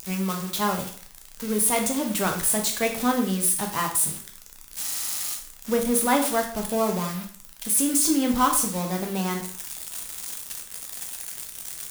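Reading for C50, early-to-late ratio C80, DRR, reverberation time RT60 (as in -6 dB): 7.5 dB, 12.0 dB, 2.5 dB, 0.50 s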